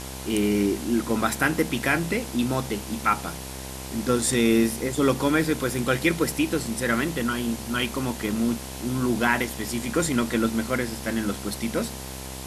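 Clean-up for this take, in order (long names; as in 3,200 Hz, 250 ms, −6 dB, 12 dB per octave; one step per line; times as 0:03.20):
hum removal 65.5 Hz, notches 16
broadband denoise 30 dB, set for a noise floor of −36 dBFS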